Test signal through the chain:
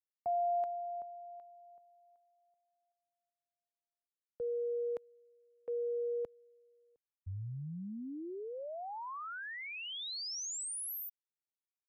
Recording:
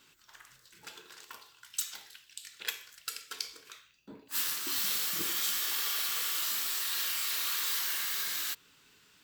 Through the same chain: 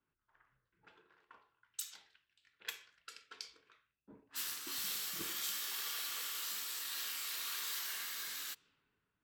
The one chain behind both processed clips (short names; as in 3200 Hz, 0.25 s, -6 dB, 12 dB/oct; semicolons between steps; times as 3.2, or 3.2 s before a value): low-pass opened by the level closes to 1400 Hz, open at -32 dBFS; three-band expander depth 40%; gain -7.5 dB